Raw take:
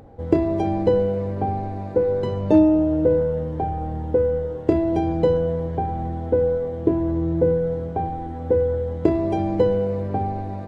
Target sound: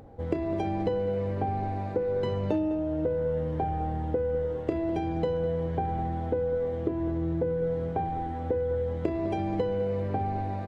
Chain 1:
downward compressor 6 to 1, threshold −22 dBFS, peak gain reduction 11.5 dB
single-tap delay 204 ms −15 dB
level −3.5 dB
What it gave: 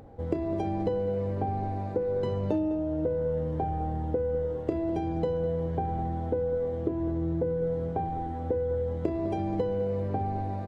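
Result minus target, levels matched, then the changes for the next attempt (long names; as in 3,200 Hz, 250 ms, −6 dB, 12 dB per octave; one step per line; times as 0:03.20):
2,000 Hz band −4.5 dB
add after downward compressor: dynamic equaliser 2,300 Hz, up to +6 dB, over −49 dBFS, Q 0.72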